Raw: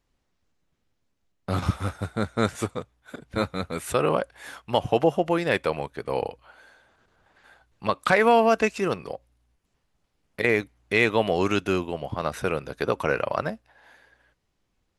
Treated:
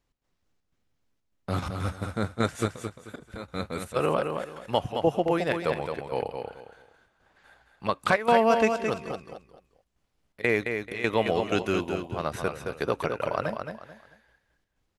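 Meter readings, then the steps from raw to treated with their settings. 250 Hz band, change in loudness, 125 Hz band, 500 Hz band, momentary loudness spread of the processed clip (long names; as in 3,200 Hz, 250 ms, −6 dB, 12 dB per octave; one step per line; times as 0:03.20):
−2.5 dB, −3.0 dB, −2.5 dB, −2.5 dB, 15 LU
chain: gate pattern "x.xxx.xxx" 125 BPM −12 dB
on a send: repeating echo 218 ms, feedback 27%, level −6 dB
on the sum: level −2.5 dB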